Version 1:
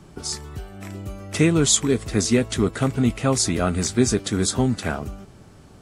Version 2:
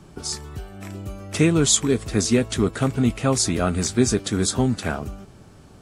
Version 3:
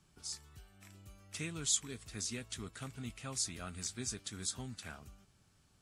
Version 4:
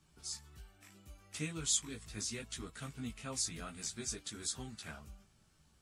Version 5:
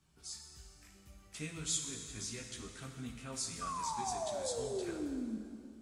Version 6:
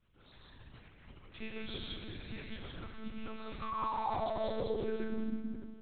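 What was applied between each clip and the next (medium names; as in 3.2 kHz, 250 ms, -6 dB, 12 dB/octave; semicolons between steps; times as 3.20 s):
band-stop 2 kHz, Q 29
amplifier tone stack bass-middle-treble 5-5-5; trim -7.5 dB
chorus voices 6, 0.65 Hz, delay 16 ms, depth 3.3 ms; trim +3 dB
painted sound fall, 3.61–5.38 s, 210–1200 Hz -37 dBFS; plate-style reverb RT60 2.4 s, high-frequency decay 0.85×, DRR 3.5 dB; trim -3.5 dB
gated-style reverb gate 200 ms rising, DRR -1 dB; monotone LPC vocoder at 8 kHz 220 Hz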